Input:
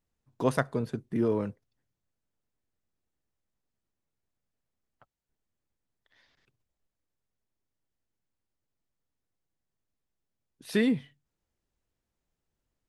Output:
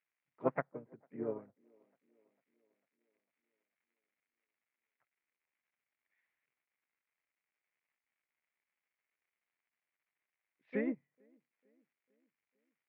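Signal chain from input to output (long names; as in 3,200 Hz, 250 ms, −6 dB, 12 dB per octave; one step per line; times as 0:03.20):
surface crackle 300 per second −51 dBFS
pitch-shifted copies added +4 semitones −6 dB
high-pass filter 100 Hz
on a send: delay with a band-pass on its return 449 ms, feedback 54%, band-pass 440 Hz, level −15.5 dB
on the sum: treble cut that deepens with the level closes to 950 Hz, closed at −28 dBFS
transistor ladder low-pass 2,400 Hz, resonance 65%
low-shelf EQ 230 Hz −7 dB
expander for the loud parts 2.5 to 1, over −47 dBFS
level +7 dB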